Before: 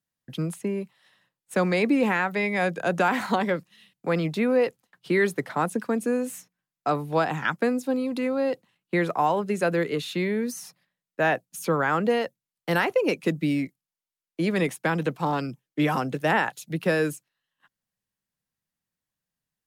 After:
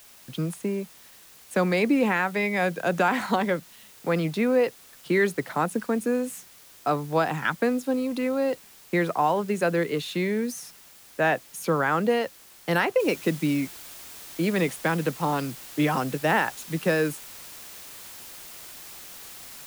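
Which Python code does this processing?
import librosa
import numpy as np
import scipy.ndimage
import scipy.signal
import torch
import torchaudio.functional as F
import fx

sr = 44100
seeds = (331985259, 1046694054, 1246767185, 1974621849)

y = fx.quant_companded(x, sr, bits=8, at=(7.61, 9.44))
y = fx.noise_floor_step(y, sr, seeds[0], at_s=13.0, before_db=-51, after_db=-43, tilt_db=0.0)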